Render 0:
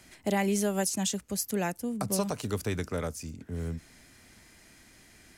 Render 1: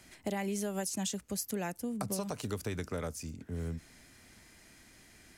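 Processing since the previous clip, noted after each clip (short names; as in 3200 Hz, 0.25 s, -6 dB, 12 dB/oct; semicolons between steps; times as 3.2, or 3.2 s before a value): compressor 4:1, threshold -30 dBFS, peak gain reduction 7 dB; gain -2 dB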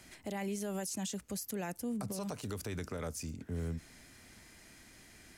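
limiter -31 dBFS, peak gain reduction 9 dB; gain +1 dB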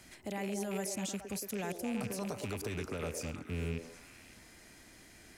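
rattling part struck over -40 dBFS, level -34 dBFS; on a send: delay with a stepping band-pass 0.111 s, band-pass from 390 Hz, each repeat 0.7 oct, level -1.5 dB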